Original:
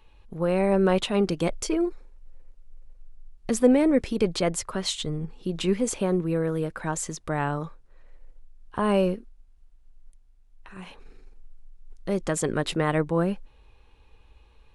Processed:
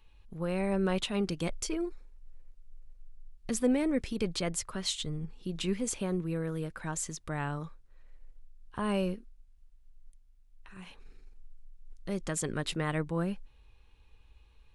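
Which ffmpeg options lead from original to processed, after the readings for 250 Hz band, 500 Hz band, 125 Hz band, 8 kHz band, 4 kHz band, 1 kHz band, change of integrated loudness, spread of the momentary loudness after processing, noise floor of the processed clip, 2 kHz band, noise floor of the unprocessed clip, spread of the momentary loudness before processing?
-7.5 dB, -10.0 dB, -6.0 dB, -3.5 dB, -4.5 dB, -9.0 dB, -7.5 dB, 15 LU, -60 dBFS, -6.0 dB, -56 dBFS, 15 LU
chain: -af "equalizer=f=570:w=0.47:g=-7,volume=0.668"

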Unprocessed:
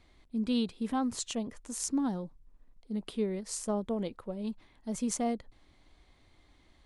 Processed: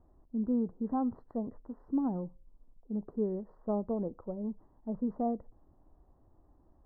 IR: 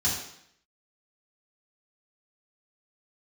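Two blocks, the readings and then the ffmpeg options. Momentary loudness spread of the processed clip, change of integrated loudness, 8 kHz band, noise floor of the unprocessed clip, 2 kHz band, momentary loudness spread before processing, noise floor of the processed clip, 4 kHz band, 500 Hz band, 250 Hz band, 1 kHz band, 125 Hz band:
9 LU, -1.0 dB, under -40 dB, -63 dBFS, under -15 dB, 9 LU, -65 dBFS, under -40 dB, 0.0 dB, -0.5 dB, -1.0 dB, 0.0 dB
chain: -filter_complex "[0:a]lowpass=f=1000:w=0.5412,lowpass=f=1000:w=1.3066,asplit=2[s0][s1];[1:a]atrim=start_sample=2205,asetrate=79380,aresample=44100[s2];[s1][s2]afir=irnorm=-1:irlink=0,volume=0.0422[s3];[s0][s3]amix=inputs=2:normalize=0,afftfilt=real='re*eq(mod(floor(b*sr/1024/2000),2),0)':imag='im*eq(mod(floor(b*sr/1024/2000),2),0)':win_size=1024:overlap=0.75"

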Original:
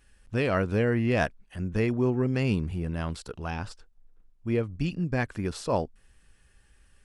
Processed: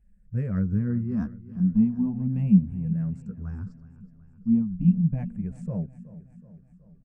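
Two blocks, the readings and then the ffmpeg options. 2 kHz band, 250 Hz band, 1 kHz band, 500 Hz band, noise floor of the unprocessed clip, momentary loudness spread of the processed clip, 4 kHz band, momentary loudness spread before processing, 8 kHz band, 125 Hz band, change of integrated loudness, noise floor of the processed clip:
under -15 dB, +6.0 dB, under -15 dB, -16.0 dB, -62 dBFS, 15 LU, under -25 dB, 11 LU, under -20 dB, +3.5 dB, +2.5 dB, -56 dBFS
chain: -filter_complex "[0:a]afftfilt=real='re*pow(10,13/40*sin(2*PI*(0.5*log(max(b,1)*sr/1024/100)/log(2)-(-0.37)*(pts-256)/sr)))':imag='im*pow(10,13/40*sin(2*PI*(0.5*log(max(b,1)*sr/1024/100)/log(2)-(-0.37)*(pts-256)/sr)))':win_size=1024:overlap=0.75,firequalizer=gain_entry='entry(130,0);entry(190,14);entry(340,-15);entry(920,-14);entry(3400,-25);entry(7600,-2)':delay=0.05:min_phase=1,acrossover=split=1500[s0][s1];[s0]flanger=delay=2.3:depth=9.4:regen=-7:speed=0.73:shape=triangular[s2];[s1]adynamicsmooth=sensitivity=4.5:basefreq=2200[s3];[s2][s3]amix=inputs=2:normalize=0,aecho=1:1:373|746|1119|1492|1865:0.141|0.0805|0.0459|0.0262|0.0149"

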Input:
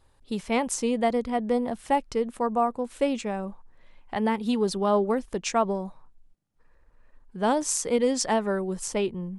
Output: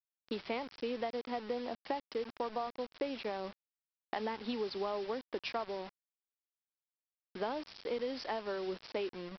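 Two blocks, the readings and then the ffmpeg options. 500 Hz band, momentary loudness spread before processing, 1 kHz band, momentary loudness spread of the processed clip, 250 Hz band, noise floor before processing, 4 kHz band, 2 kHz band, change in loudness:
-11.0 dB, 9 LU, -12.5 dB, 5 LU, -15.5 dB, -61 dBFS, -8.0 dB, -9.5 dB, -12.5 dB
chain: -af "highpass=f=270:w=0.5412,highpass=f=270:w=1.3066,acompressor=threshold=0.02:ratio=8,aresample=11025,acrusher=bits=7:mix=0:aa=0.000001,aresample=44100"

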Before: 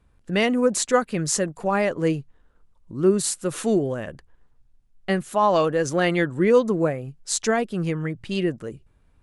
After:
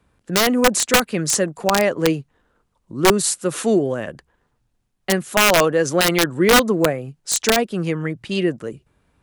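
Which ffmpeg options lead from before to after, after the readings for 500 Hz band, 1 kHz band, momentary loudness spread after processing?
+3.0 dB, +4.5 dB, 12 LU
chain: -filter_complex "[0:a]acrossover=split=200[s0][s1];[s0]acompressor=threshold=0.0355:ratio=4[s2];[s2][s1]amix=inputs=2:normalize=0,highpass=f=150:p=1,aeval=exprs='(mod(3.76*val(0)+1,2)-1)/3.76':c=same,volume=1.78"

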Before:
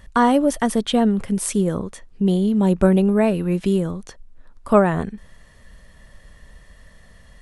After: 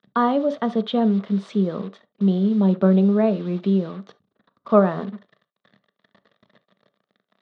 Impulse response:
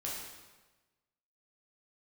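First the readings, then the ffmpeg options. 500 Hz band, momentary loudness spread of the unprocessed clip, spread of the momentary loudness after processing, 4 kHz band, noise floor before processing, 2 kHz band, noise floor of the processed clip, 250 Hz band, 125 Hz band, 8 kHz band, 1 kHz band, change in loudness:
-1.5 dB, 11 LU, 15 LU, no reading, -49 dBFS, -7.0 dB, -80 dBFS, -1.0 dB, -1.0 dB, under -25 dB, -3.0 dB, -1.5 dB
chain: -filter_complex "[0:a]acrusher=bits=5:mix=0:aa=0.5,highpass=f=150:w=0.5412,highpass=f=150:w=1.3066,equalizer=f=200:t=q:w=4:g=9,equalizer=f=430:t=q:w=4:g=6,equalizer=f=630:t=q:w=4:g=7,equalizer=f=1200:t=q:w=4:g=8,equalizer=f=2500:t=q:w=4:g=-3,equalizer=f=3700:t=q:w=4:g=8,lowpass=f=4300:w=0.5412,lowpass=f=4300:w=1.3066,asplit=2[s0][s1];[1:a]atrim=start_sample=2205,atrim=end_sample=3528,highshelf=f=2000:g=-9.5[s2];[s1][s2]afir=irnorm=-1:irlink=0,volume=0.398[s3];[s0][s3]amix=inputs=2:normalize=0,volume=0.335"

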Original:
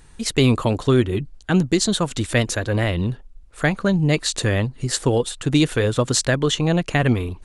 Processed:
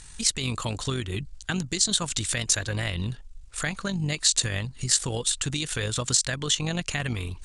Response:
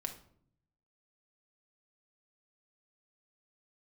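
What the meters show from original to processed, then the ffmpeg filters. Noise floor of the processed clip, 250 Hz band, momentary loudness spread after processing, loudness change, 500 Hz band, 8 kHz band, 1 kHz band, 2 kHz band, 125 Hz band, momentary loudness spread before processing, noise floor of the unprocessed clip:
-46 dBFS, -13.0 dB, 9 LU, -5.5 dB, -14.5 dB, +3.0 dB, -9.5 dB, -6.0 dB, -9.5 dB, 5 LU, -45 dBFS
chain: -af "lowpass=f=8700:w=0.5412,lowpass=f=8700:w=1.3066,equalizer=f=380:w=0.5:g=-8.5,tremolo=f=48:d=0.462,acompressor=threshold=0.0126:ratio=1.5,alimiter=limit=0.0794:level=0:latency=1:release=99,crystalizer=i=3:c=0,volume=1.5"

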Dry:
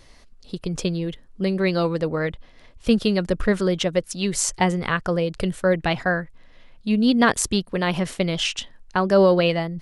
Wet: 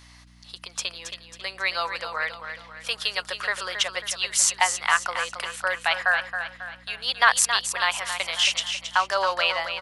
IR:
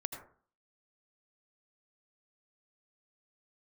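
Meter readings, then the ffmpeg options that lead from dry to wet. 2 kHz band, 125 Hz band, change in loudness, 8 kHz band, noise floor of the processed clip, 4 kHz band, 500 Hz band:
+4.0 dB, under -25 dB, -2.0 dB, +4.0 dB, -50 dBFS, +4.0 dB, -12.5 dB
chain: -af "highpass=f=870:w=0.5412,highpass=f=870:w=1.3066,aeval=exprs='val(0)+0.00178*(sin(2*PI*60*n/s)+sin(2*PI*2*60*n/s)/2+sin(2*PI*3*60*n/s)/3+sin(2*PI*4*60*n/s)/4+sin(2*PI*5*60*n/s)/5)':c=same,aecho=1:1:272|544|816|1088|1360:0.376|0.169|0.0761|0.0342|0.0154,volume=1.5"

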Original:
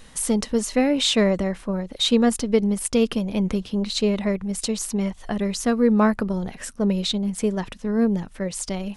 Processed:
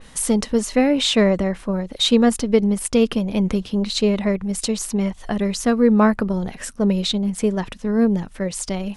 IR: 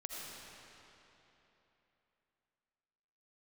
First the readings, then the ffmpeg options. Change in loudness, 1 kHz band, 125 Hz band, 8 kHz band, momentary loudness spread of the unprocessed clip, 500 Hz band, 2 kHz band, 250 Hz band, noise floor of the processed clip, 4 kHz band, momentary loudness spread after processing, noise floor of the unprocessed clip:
+3.0 dB, +3.0 dB, +3.0 dB, +1.5 dB, 9 LU, +3.0 dB, +2.5 dB, +3.0 dB, -43 dBFS, +2.0 dB, 8 LU, -46 dBFS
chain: -af "adynamicequalizer=threshold=0.01:dfrequency=3600:dqfactor=0.7:tfrequency=3600:tqfactor=0.7:attack=5:release=100:ratio=0.375:range=2:mode=cutabove:tftype=highshelf,volume=1.41"

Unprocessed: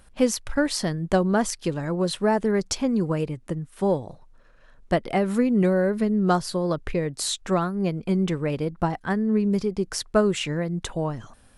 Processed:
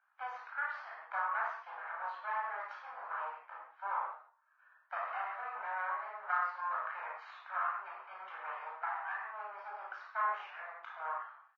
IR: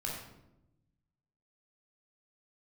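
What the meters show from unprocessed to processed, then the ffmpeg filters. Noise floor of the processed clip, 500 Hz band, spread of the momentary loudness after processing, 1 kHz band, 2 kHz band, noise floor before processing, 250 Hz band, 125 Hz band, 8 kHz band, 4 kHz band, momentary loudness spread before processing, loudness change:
-70 dBFS, -26.5 dB, 11 LU, -5.0 dB, -5.0 dB, -53 dBFS, under -40 dB, under -40 dB, under -40 dB, under -25 dB, 7 LU, -15.0 dB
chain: -filter_complex "[0:a]asplit=2[s0][s1];[s1]adelay=36,volume=0.596[s2];[s0][s2]amix=inputs=2:normalize=0,aresample=16000,aeval=exprs='max(val(0),0)':c=same,aresample=44100,agate=range=0.398:threshold=0.00251:ratio=16:detection=peak,highpass=f=1000:w=0.5412,highpass=f=1000:w=1.3066,aderivative[s3];[1:a]atrim=start_sample=2205,afade=t=out:st=0.24:d=0.01,atrim=end_sample=11025[s4];[s3][s4]afir=irnorm=-1:irlink=0,asplit=2[s5][s6];[s6]acompressor=threshold=0.00398:ratio=6,volume=1.12[s7];[s5][s7]amix=inputs=2:normalize=0,lowpass=f=1300:w=0.5412,lowpass=f=1300:w=1.3066,volume=3.76" -ar 16000 -c:a libvorbis -b:a 32k

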